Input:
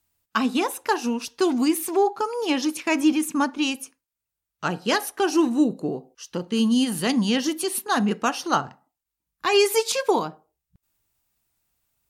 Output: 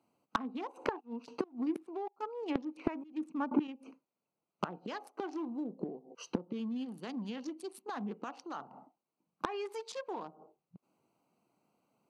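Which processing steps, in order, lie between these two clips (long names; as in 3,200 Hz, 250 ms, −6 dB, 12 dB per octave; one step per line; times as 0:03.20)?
adaptive Wiener filter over 25 samples
0:00.99–0:03.67: gate pattern "..xxx...x..xx." 94 BPM −24 dB
dynamic equaliser 1,000 Hz, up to +5 dB, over −36 dBFS, Q 1.2
brickwall limiter −16.5 dBFS, peak gain reduction 12.5 dB
gate with flip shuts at −26 dBFS, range −27 dB
high-pass filter 180 Hz 24 dB per octave
treble cut that deepens with the level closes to 1,900 Hz, closed at −43.5 dBFS
soft clipping −30.5 dBFS, distortion −12 dB
level +12 dB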